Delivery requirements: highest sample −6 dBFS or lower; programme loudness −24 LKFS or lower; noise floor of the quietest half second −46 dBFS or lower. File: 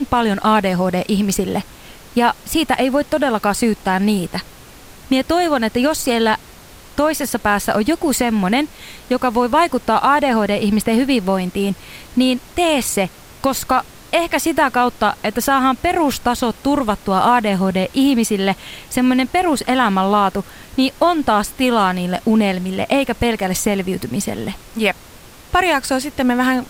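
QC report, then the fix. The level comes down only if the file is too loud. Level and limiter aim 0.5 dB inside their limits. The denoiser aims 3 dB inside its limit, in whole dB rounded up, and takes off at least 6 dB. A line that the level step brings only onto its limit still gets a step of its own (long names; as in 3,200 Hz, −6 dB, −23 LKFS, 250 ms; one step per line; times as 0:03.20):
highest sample −3.5 dBFS: out of spec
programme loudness −17.5 LKFS: out of spec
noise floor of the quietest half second −41 dBFS: out of spec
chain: level −7 dB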